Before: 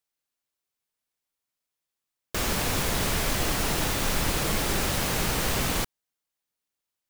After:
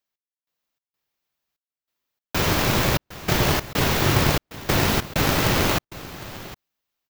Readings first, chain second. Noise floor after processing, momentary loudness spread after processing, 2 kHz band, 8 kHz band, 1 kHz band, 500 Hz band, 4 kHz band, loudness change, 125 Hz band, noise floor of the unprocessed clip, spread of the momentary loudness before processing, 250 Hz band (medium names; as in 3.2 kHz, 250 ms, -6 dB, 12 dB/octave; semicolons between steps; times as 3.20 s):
under -85 dBFS, 17 LU, +5.5 dB, -0.5 dB, +6.0 dB, +6.5 dB, +4.0 dB, +5.0 dB, +8.0 dB, under -85 dBFS, 3 LU, +6.5 dB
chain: peaking EQ 9.2 kHz -12 dB 0.72 oct; level rider gain up to 4 dB; trance gate "x..xx.xxx" 96 bpm -60 dB; delay 759 ms -16.5 dB; polarity switched at an audio rate 120 Hz; trim +2.5 dB